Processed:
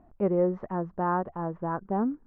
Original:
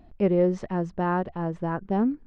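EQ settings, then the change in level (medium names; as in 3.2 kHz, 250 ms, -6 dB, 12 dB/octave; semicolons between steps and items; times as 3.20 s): resonant low-pass 1.2 kHz, resonance Q 1.7; bass shelf 120 Hz -5 dB; -3.5 dB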